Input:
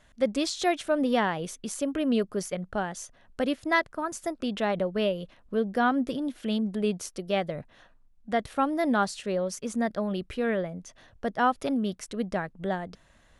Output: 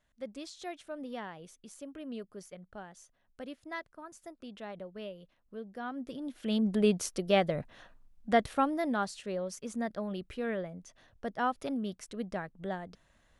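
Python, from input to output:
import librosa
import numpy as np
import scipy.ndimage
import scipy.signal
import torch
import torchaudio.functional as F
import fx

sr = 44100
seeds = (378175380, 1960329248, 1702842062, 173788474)

y = fx.gain(x, sr, db=fx.line((5.83, -16.0), (6.35, -6.5), (6.7, 1.5), (8.39, 1.5), (8.9, -7.0)))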